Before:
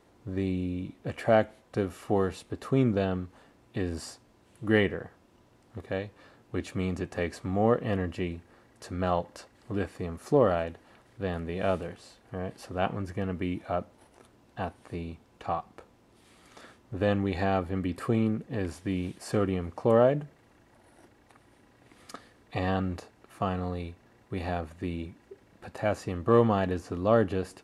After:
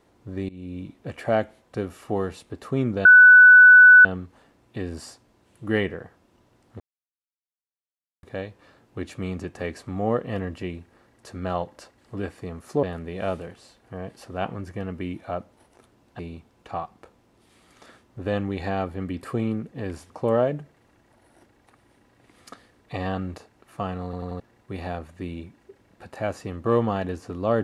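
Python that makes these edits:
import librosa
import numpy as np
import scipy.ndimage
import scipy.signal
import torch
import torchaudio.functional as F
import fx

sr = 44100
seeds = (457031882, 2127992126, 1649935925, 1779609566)

y = fx.edit(x, sr, fx.fade_in_from(start_s=0.49, length_s=0.3, floor_db=-20.5),
    fx.insert_tone(at_s=3.05, length_s=1.0, hz=1490.0, db=-6.5),
    fx.insert_silence(at_s=5.8, length_s=1.43),
    fx.cut(start_s=10.4, length_s=0.84),
    fx.cut(start_s=14.6, length_s=0.34),
    fx.cut(start_s=18.85, length_s=0.87),
    fx.stutter_over(start_s=23.66, slice_s=0.09, count=4), tone=tone)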